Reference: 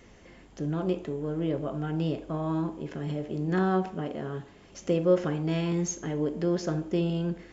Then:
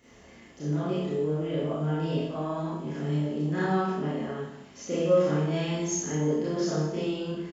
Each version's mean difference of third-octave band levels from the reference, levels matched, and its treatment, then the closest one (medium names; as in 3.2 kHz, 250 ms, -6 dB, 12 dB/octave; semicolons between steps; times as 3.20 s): 5.0 dB: high-pass 56 Hz; treble shelf 6.1 kHz +4.5 dB; doubling 26 ms -5 dB; Schroeder reverb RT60 0.83 s, combs from 27 ms, DRR -9 dB; trim -8.5 dB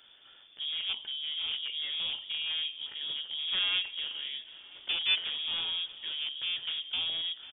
14.5 dB: one-sided wavefolder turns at -25 dBFS; gain riding 2 s; on a send: feedback delay 495 ms, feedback 48%, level -17 dB; on the sum: frequency inversion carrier 3.5 kHz; trim -5 dB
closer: first